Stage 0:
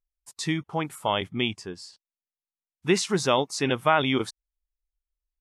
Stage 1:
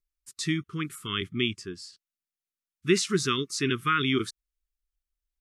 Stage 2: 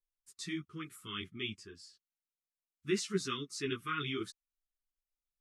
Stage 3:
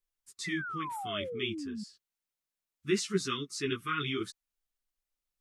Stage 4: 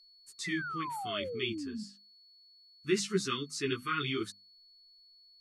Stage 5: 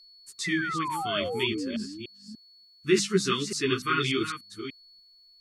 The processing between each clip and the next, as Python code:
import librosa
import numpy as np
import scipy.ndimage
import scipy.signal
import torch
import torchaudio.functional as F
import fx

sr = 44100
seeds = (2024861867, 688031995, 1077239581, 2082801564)

y1 = scipy.signal.sosfilt(scipy.signal.ellip(3, 1.0, 40, [400.0, 1200.0], 'bandstop', fs=sr, output='sos'), x)
y2 = fx.ensemble(y1, sr)
y2 = F.gain(torch.from_numpy(y2), -7.5).numpy()
y3 = fx.spec_paint(y2, sr, seeds[0], shape='fall', start_s=0.44, length_s=1.4, low_hz=200.0, high_hz=2100.0, level_db=-42.0)
y3 = F.gain(torch.from_numpy(y3), 3.5).numpy()
y4 = y3 + 10.0 ** (-58.0 / 20.0) * np.sin(2.0 * np.pi * 4400.0 * np.arange(len(y3)) / sr)
y4 = fx.hum_notches(y4, sr, base_hz=50, count=5)
y5 = fx.reverse_delay(y4, sr, ms=294, wet_db=-9)
y5 = F.gain(torch.from_numpy(y5), 6.5).numpy()